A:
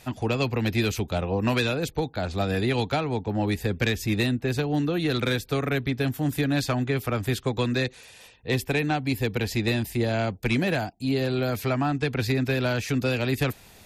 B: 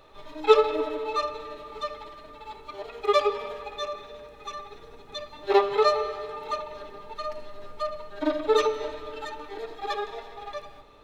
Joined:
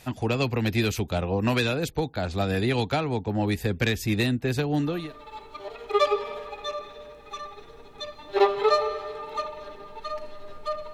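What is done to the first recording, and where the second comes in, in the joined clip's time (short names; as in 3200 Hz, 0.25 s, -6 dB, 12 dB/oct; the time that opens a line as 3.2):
A
4.93 switch to B from 2.07 s, crossfade 0.40 s equal-power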